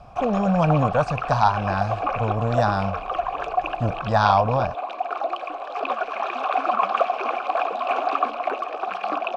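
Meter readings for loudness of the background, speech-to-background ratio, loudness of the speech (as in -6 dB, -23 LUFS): -26.5 LUFS, 3.5 dB, -23.0 LUFS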